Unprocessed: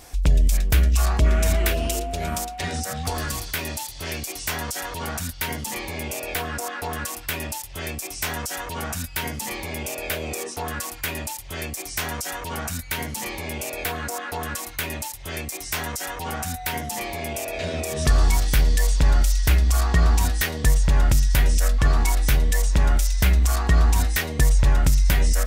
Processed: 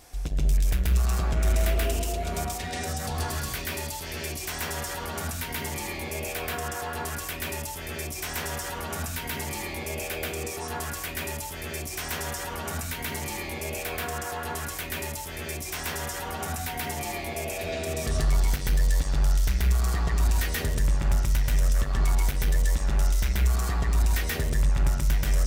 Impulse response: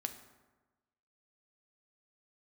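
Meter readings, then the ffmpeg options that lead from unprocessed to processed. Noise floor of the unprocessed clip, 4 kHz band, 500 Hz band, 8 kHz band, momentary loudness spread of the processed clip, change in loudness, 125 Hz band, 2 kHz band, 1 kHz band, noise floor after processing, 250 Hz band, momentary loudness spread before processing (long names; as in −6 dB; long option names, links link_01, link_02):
−36 dBFS, −4.5 dB, −3.0 dB, −5.0 dB, 7 LU, −4.5 dB, −5.0 dB, −4.5 dB, −4.0 dB, −36 dBFS, −5.0 dB, 10 LU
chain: -filter_complex "[0:a]asoftclip=type=tanh:threshold=-17dB,asplit=2[link_01][link_02];[1:a]atrim=start_sample=2205,asetrate=70560,aresample=44100,adelay=132[link_03];[link_02][link_03]afir=irnorm=-1:irlink=0,volume=7dB[link_04];[link_01][link_04]amix=inputs=2:normalize=0,volume=-6.5dB"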